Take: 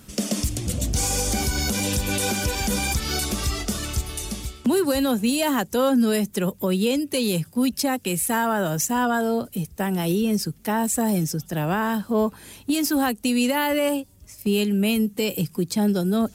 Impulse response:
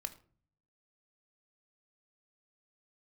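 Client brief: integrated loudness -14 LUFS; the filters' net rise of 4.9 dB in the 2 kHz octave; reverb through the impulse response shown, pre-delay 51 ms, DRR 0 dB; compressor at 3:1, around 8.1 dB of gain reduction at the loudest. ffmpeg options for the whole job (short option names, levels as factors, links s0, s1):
-filter_complex "[0:a]equalizer=f=2000:t=o:g=6.5,acompressor=threshold=0.0398:ratio=3,asplit=2[s0][s1];[1:a]atrim=start_sample=2205,adelay=51[s2];[s1][s2]afir=irnorm=-1:irlink=0,volume=1.26[s3];[s0][s3]amix=inputs=2:normalize=0,volume=4.22"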